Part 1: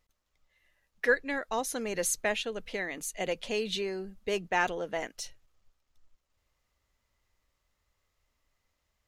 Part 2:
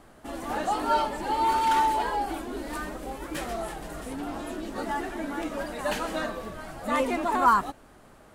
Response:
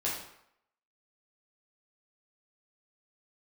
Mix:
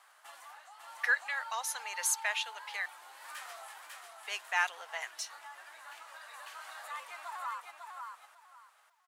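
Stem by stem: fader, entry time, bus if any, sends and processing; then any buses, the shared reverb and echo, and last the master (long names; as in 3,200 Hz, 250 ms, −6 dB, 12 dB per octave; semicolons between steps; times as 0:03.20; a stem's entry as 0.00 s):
0.0 dB, 0.00 s, muted 0:02.86–0:04.03, no send, no echo send, no processing
−2.5 dB, 0.00 s, no send, echo send −5 dB, downward compressor 6 to 1, threshold −34 dBFS, peak gain reduction 17.5 dB; automatic ducking −10 dB, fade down 0.45 s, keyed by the first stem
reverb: not used
echo: repeating echo 548 ms, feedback 22%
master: high-pass filter 940 Hz 24 dB per octave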